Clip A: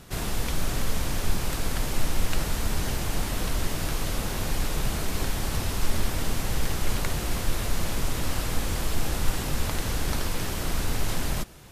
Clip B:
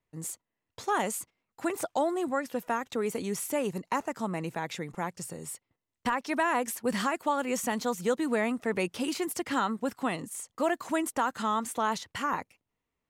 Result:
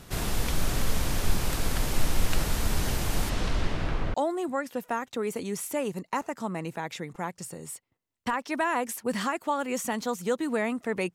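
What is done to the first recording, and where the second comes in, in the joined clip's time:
clip A
3.29–4.14 s: low-pass 7 kHz -> 1.7 kHz
4.14 s: go over to clip B from 1.93 s

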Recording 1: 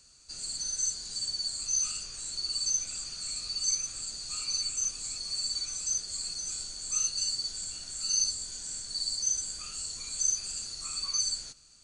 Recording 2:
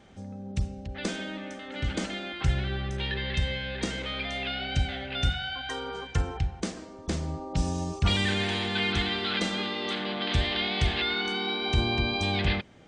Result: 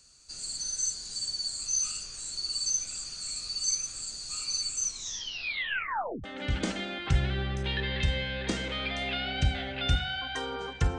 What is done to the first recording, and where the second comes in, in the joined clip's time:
recording 1
4.84 s: tape stop 1.40 s
6.24 s: go over to recording 2 from 1.58 s

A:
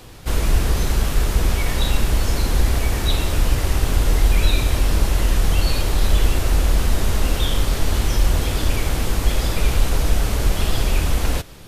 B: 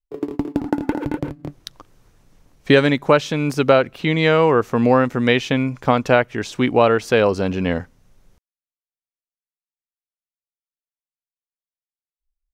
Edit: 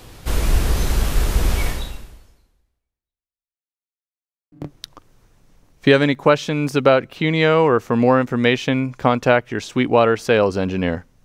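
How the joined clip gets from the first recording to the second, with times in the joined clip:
A
1.66–3.57 s: fade out exponential
3.57–4.52 s: mute
4.52 s: go over to B from 1.35 s

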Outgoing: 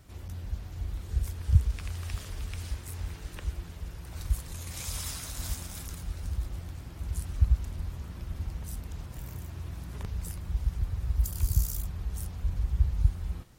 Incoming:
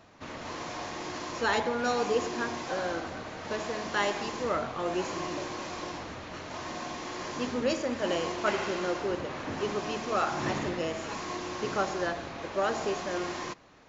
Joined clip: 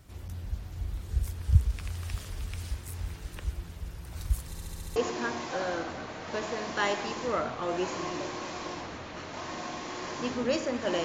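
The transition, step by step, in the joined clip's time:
outgoing
4.47 s: stutter in place 0.07 s, 7 plays
4.96 s: go over to incoming from 2.13 s

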